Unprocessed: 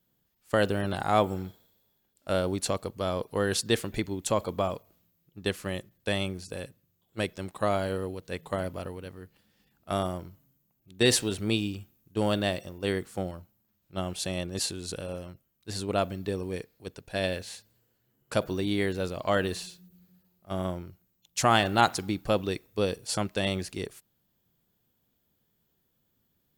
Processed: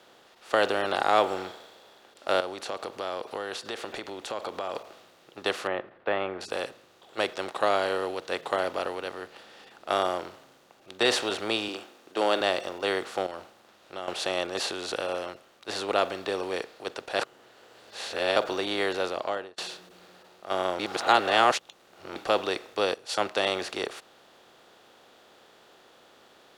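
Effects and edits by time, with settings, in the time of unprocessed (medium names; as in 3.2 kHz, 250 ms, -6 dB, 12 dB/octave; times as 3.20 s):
2.40–4.75 s: compression, threshold -38 dBFS
5.67–6.41 s: inverse Chebyshev low-pass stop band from 6.4 kHz, stop band 60 dB
11.68–12.41 s: resonant low shelf 180 Hz -14 dB, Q 1.5
13.26–14.08 s: compression, threshold -42 dBFS
17.19–18.36 s: reverse
18.90–19.58 s: studio fade out
20.79–22.16 s: reverse
22.94–23.35 s: three bands expanded up and down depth 70%
whole clip: spectral levelling over time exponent 0.6; three-band isolator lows -19 dB, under 340 Hz, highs -13 dB, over 5.1 kHz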